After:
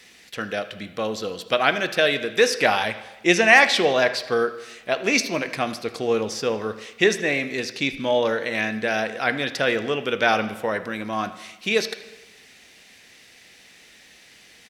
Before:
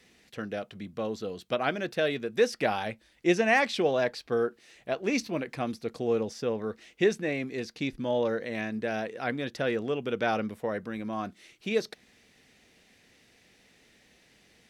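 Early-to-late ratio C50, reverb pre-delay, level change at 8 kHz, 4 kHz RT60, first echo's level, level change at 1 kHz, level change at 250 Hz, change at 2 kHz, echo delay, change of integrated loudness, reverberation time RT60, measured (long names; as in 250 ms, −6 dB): 12.0 dB, 6 ms, +13.0 dB, 1.0 s, −19.5 dB, +8.5 dB, +4.0 dB, +12.0 dB, 78 ms, +8.0 dB, 1.1 s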